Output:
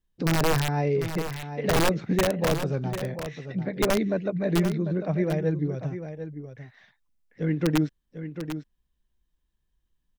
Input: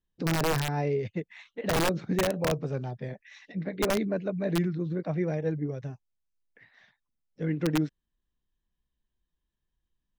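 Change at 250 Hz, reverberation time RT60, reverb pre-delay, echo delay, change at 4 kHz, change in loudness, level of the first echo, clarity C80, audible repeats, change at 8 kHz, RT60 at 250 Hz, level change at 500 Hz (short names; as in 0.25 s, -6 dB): +4.0 dB, none, none, 0.746 s, +3.5 dB, +3.0 dB, -10.0 dB, none, 1, +3.5 dB, none, +3.5 dB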